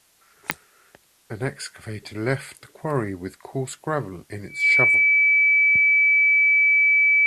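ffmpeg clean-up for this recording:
-af "adeclick=t=4,bandreject=f=2.3k:w=30,agate=range=-21dB:threshold=-51dB"

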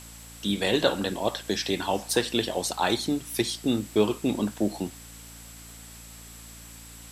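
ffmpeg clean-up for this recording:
-af "adeclick=t=4,bandreject=f=56.8:t=h:w=4,bandreject=f=113.6:t=h:w=4,bandreject=f=170.4:t=h:w=4,bandreject=f=227.2:t=h:w=4,bandreject=f=284:t=h:w=4,bandreject=f=7.7k:w=30,afwtdn=0.0045"

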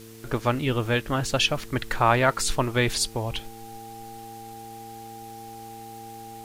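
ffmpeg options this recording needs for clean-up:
-af "adeclick=t=4,bandreject=f=112.3:t=h:w=4,bandreject=f=224.6:t=h:w=4,bandreject=f=336.9:t=h:w=4,bandreject=f=449.2:t=h:w=4,bandreject=f=800:w=30,afwtdn=0.0032"

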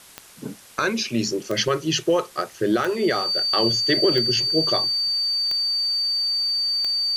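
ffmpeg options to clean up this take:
-af "adeclick=t=4,bandreject=f=4.6k:w=30,afwtdn=0.005"

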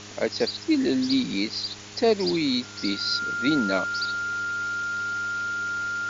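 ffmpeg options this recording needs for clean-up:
-af "bandreject=f=103:t=h:w=4,bandreject=f=206:t=h:w=4,bandreject=f=309:t=h:w=4,bandreject=f=412:t=h:w=4,bandreject=f=1.4k:w=30,afwtdn=0.011"

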